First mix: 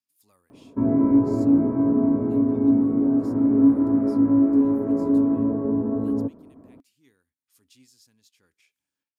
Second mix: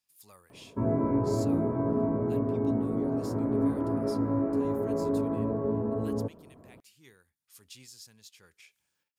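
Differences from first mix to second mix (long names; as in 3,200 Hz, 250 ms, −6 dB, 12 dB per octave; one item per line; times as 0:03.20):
speech +8.5 dB
master: add parametric band 270 Hz −12.5 dB 0.44 octaves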